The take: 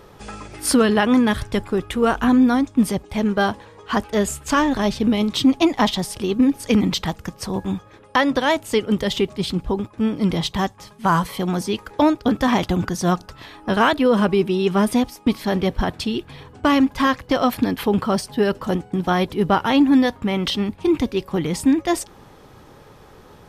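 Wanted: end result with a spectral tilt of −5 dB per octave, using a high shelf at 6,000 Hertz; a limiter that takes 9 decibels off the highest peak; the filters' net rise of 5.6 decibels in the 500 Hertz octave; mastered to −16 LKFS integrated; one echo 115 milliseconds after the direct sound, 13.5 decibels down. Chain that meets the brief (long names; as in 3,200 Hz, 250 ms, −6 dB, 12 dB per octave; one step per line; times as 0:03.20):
parametric band 500 Hz +7 dB
high-shelf EQ 6,000 Hz +4 dB
brickwall limiter −11 dBFS
single-tap delay 115 ms −13.5 dB
level +5 dB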